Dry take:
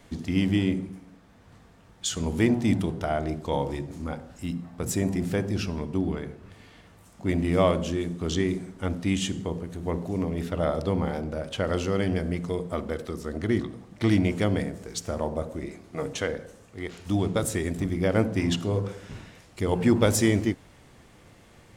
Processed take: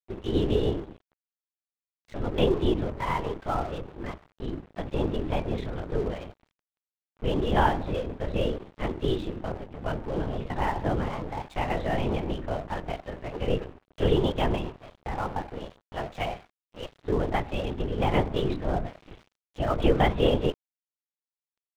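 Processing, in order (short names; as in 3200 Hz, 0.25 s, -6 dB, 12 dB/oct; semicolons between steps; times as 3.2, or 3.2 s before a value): pitch shift +6.5 st; LPC vocoder at 8 kHz whisper; crossover distortion -42 dBFS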